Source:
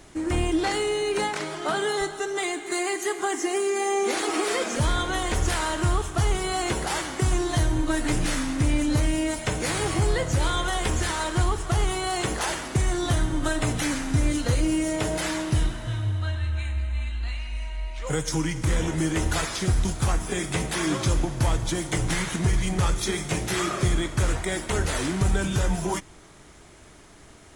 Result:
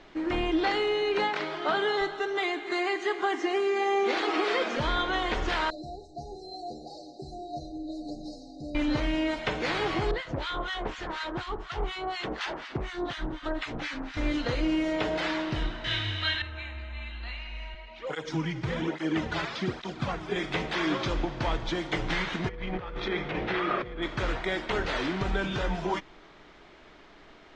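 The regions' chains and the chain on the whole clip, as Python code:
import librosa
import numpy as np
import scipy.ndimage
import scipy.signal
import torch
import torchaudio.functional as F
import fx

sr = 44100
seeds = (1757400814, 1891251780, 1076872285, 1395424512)

y = fx.chain(x, sr, fx.brickwall_bandstop(low_hz=820.0, high_hz=3800.0),
    fx.low_shelf(hz=210.0, db=-4.5),
    fx.stiff_resonator(f0_hz=72.0, decay_s=0.28, stiffness=0.008), at=(5.7, 8.75))
y = fx.chain(y, sr, fx.harmonic_tremolo(hz=4.1, depth_pct=100, crossover_hz=1200.0),
    fx.doppler_dist(depth_ms=0.43), at=(10.11, 14.17))
y = fx.chain(y, sr, fx.band_shelf(hz=4100.0, db=13.5, octaves=2.8),
    fx.doubler(ms=20.0, db=-3), at=(15.84, 16.42))
y = fx.chain(y, sr, fx.highpass(hz=76.0, slope=12),
    fx.low_shelf(hz=350.0, db=6.0),
    fx.flanger_cancel(hz=1.2, depth_ms=4.5), at=(17.74, 20.36))
y = fx.lowpass(y, sr, hz=2700.0, slope=12, at=(22.48, 24.01), fade=0.02)
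y = fx.over_compress(y, sr, threshold_db=-28.0, ratio=-1.0, at=(22.48, 24.01), fade=0.02)
y = fx.dmg_tone(y, sr, hz=490.0, level_db=-42.0, at=(22.48, 24.01), fade=0.02)
y = scipy.signal.sosfilt(scipy.signal.butter(4, 4200.0, 'lowpass', fs=sr, output='sos'), y)
y = fx.peak_eq(y, sr, hz=84.0, db=-15.0, octaves=1.8)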